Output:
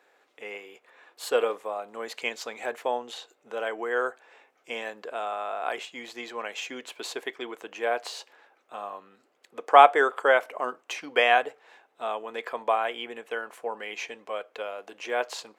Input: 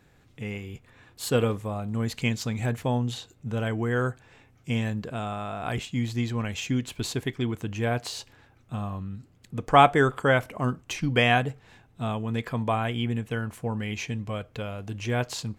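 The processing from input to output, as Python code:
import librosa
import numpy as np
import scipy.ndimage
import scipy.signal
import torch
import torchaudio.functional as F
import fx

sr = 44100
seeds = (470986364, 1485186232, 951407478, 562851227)

y = scipy.signal.sosfilt(scipy.signal.butter(4, 450.0, 'highpass', fs=sr, output='sos'), x)
y = fx.high_shelf(y, sr, hz=3200.0, db=-9.5)
y = y * 10.0 ** (3.5 / 20.0)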